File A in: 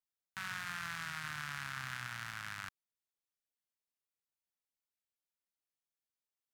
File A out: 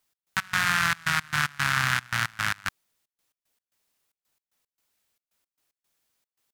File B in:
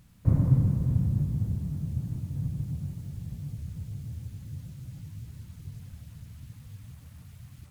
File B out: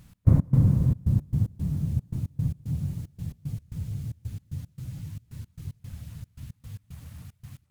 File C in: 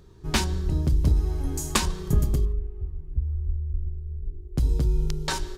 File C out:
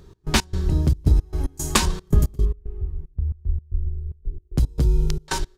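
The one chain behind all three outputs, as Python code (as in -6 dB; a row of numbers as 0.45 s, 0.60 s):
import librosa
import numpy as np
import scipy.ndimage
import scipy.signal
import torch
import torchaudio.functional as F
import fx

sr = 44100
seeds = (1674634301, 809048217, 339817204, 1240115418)

y = fx.step_gate(x, sr, bpm=113, pattern='x.x.xxx.', floor_db=-24.0, edge_ms=4.5)
y = librosa.util.normalize(y) * 10.0 ** (-6 / 20.0)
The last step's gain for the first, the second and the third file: +18.5 dB, +4.5 dB, +4.5 dB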